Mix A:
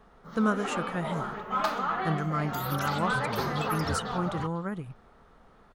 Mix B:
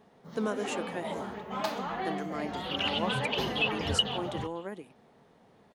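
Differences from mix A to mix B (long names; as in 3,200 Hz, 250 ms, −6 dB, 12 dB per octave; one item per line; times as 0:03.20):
speech: add high-pass filter 270 Hz 24 dB per octave
second sound: add low-pass with resonance 2,900 Hz, resonance Q 9.6
master: add parametric band 1,300 Hz −13 dB 0.53 octaves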